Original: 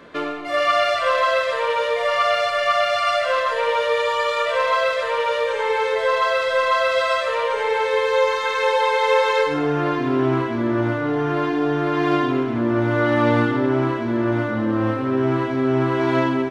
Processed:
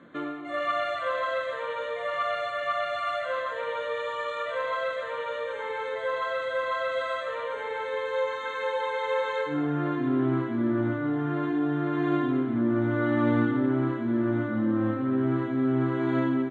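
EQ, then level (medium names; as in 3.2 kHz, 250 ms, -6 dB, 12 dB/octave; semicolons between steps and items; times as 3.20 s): Butterworth band-stop 5.1 kHz, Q 2.5; cabinet simulation 180–8400 Hz, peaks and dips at 430 Hz -10 dB, 640 Hz -6 dB, 950 Hz -7 dB, 2.6 kHz -8 dB, 5.5 kHz -5 dB; tilt EQ -2.5 dB/octave; -6.0 dB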